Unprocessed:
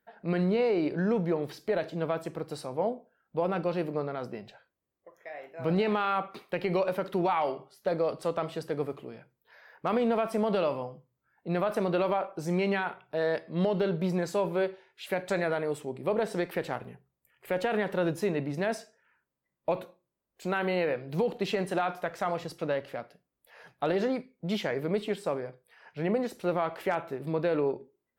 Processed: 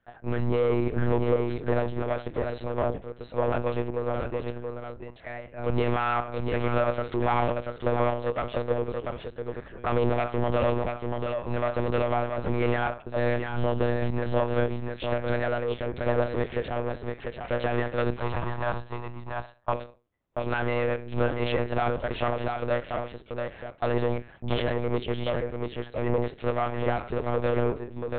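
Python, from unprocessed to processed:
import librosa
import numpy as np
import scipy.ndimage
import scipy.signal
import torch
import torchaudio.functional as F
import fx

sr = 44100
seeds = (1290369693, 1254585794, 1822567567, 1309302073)

y = fx.diode_clip(x, sr, knee_db=-28.0)
y = y + 10.0 ** (-4.5 / 20.0) * np.pad(y, (int(687 * sr / 1000.0), 0))[:len(y)]
y = fx.lpc_monotone(y, sr, seeds[0], pitch_hz=120.0, order=10)
y = fx.graphic_eq_10(y, sr, hz=(250, 500, 1000, 2000), db=(-7, -8, 10, -5), at=(18.16, 19.73))
y = F.gain(torch.from_numpy(y), 5.0).numpy()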